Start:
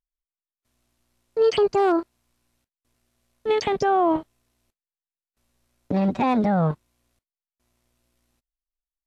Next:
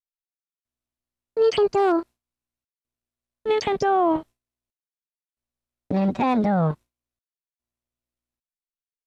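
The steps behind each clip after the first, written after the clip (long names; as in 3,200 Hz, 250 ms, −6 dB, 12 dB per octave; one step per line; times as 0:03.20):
noise gate with hold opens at −34 dBFS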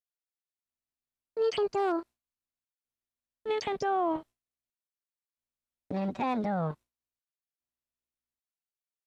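low-shelf EQ 330 Hz −4.5 dB
level −7.5 dB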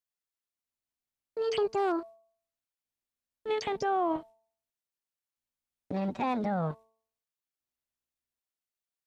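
hum removal 222.8 Hz, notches 5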